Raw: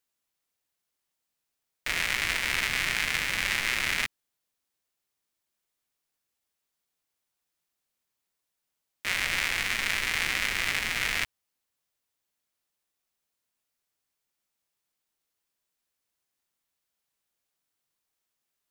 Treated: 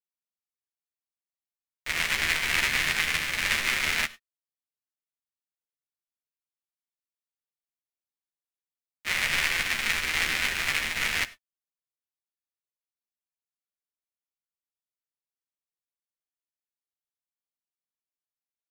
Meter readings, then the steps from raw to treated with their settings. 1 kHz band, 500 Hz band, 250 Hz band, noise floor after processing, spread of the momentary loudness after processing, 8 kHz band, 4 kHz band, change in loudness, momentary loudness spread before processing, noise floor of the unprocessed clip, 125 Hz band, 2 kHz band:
+1.5 dB, +1.5 dB, +1.5 dB, under -85 dBFS, 6 LU, +1.5 dB, +1.5 dB, +1.5 dB, 5 LU, -84 dBFS, +1.0 dB, +1.5 dB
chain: doubler 13 ms -6 dB; non-linear reverb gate 0.13 s rising, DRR 7 dB; upward expander 2.5:1, over -41 dBFS; gain +3 dB

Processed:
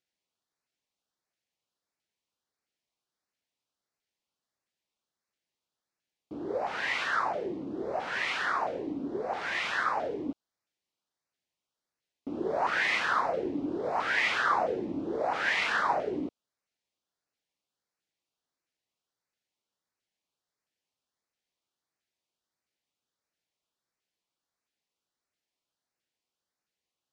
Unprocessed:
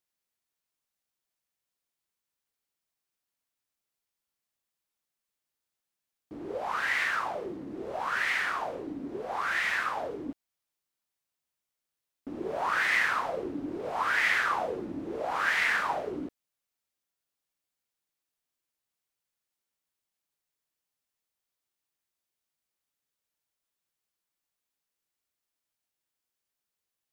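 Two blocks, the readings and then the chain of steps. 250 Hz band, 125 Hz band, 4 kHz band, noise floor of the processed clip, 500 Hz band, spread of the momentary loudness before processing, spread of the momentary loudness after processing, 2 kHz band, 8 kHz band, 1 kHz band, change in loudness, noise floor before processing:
+3.0 dB, +1.5 dB, +1.5 dB, under -85 dBFS, +3.0 dB, 14 LU, 10 LU, -2.0 dB, -3.0 dB, +1.0 dB, -0.5 dB, under -85 dBFS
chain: LPF 5300 Hz 12 dB/oct; low shelf 67 Hz -10.5 dB; LFO notch saw up 1.5 Hz 950–3600 Hz; gain +3.5 dB

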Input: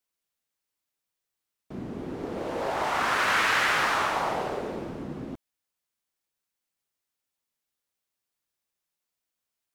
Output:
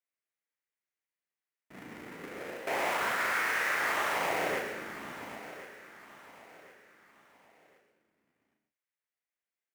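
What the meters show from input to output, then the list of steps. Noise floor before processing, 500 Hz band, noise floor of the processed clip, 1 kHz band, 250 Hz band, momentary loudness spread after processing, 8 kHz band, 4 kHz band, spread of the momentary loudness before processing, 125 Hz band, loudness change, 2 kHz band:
under -85 dBFS, -4.5 dB, under -85 dBFS, -6.5 dB, -9.0 dB, 20 LU, -3.5 dB, -8.0 dB, 17 LU, -12.0 dB, -5.0 dB, -4.0 dB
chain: half-waves squared off; gate with hold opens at -20 dBFS; graphic EQ 500/2000/4000 Hz +5/+12/-4 dB; reverse; compressor, threshold -28 dBFS, peak gain reduction 16 dB; reverse; limiter -27.5 dBFS, peak gain reduction 10 dB; HPF 140 Hz 6 dB/oct; doubler 36 ms -5 dB; on a send: feedback echo 1.063 s, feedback 37%, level -14.5 dB; on the sum: non-linear reverb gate 0.16 s rising, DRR 6 dB; gain +2.5 dB

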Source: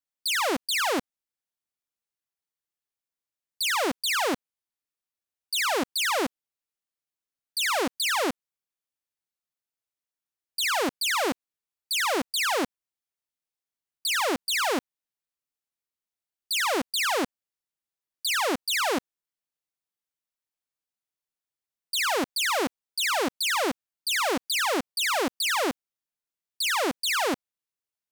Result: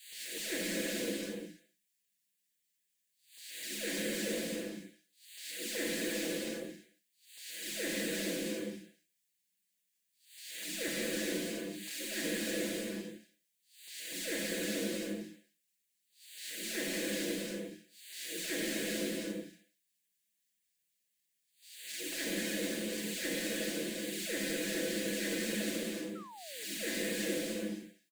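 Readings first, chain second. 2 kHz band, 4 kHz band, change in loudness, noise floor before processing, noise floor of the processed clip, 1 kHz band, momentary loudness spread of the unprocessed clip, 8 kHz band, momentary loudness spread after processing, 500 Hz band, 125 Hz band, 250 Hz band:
-11.5 dB, -11.5 dB, -10.5 dB, under -85 dBFS, -81 dBFS, -26.0 dB, 6 LU, -7.5 dB, 13 LU, -7.5 dB, +4.0 dB, -3.0 dB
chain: time blur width 0.323 s; spectral noise reduction 12 dB; elliptic band-stop 580–1700 Hz, stop band 40 dB; bell 210 Hz +13 dB 0.31 oct; in parallel at +1.5 dB: compressor, threshold -54 dBFS, peak gain reduction 15.5 dB; on the sum: soft clip -31.5 dBFS, distortion -21 dB; bell 7500 Hz +3 dB 0.39 oct; LFO notch square 4 Hz 470–5400 Hz; comb 6 ms, depth 98%; non-linear reverb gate 0.38 s flat, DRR -4 dB; painted sound fall, 26.15–26.65, 410–1400 Hz -52 dBFS; mismatched tape noise reduction encoder only

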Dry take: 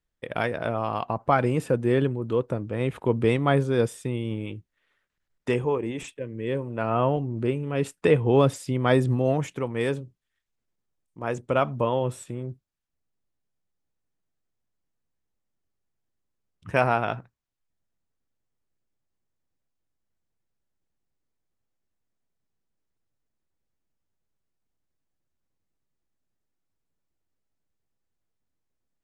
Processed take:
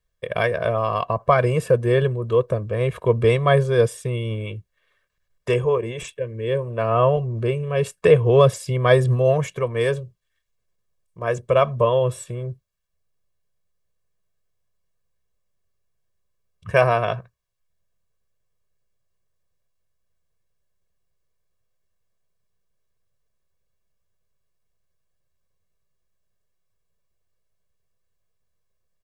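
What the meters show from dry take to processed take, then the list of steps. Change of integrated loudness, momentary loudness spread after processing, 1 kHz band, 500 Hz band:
+5.0 dB, 13 LU, +3.5 dB, +6.5 dB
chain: comb 1.8 ms, depth 100%; gain +2 dB

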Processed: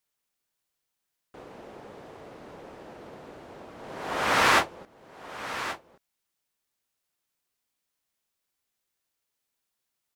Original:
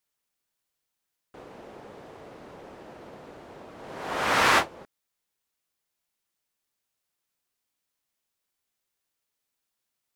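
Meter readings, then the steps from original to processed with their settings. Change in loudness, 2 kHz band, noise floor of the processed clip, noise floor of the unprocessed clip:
-2.0 dB, 0.0 dB, -83 dBFS, -83 dBFS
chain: echo 1.127 s -12.5 dB

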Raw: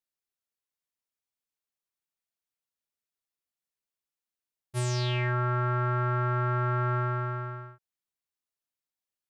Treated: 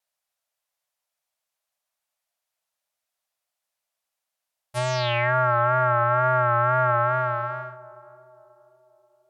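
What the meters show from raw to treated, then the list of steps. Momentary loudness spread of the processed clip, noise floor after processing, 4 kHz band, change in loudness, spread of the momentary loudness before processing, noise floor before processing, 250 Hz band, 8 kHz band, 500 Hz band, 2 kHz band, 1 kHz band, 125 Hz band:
11 LU, -85 dBFS, +5.0 dB, +7.0 dB, 8 LU, under -85 dBFS, n/a, 0.0 dB, +10.5 dB, +9.5 dB, +10.0 dB, -0.5 dB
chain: wow and flutter 58 cents; treble ducked by the level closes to 2600 Hz, closed at -24 dBFS; resonant low shelf 480 Hz -8.5 dB, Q 3; narrowing echo 0.534 s, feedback 52%, band-pass 410 Hz, level -16 dB; gain +8.5 dB

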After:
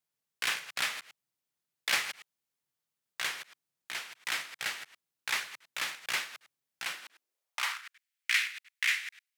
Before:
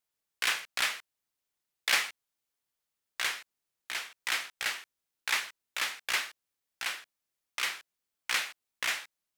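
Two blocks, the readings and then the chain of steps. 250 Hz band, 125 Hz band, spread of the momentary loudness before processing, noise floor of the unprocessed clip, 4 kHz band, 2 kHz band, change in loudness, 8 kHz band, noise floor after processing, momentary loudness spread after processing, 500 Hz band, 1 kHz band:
-1.0 dB, n/a, 13 LU, under -85 dBFS, -1.5 dB, -0.5 dB, -1.0 dB, -2.0 dB, under -85 dBFS, 15 LU, -2.5 dB, -2.0 dB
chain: reverse delay 0.101 s, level -12 dB; high-pass sweep 130 Hz -> 2000 Hz, 6.81–8; gain -2.5 dB

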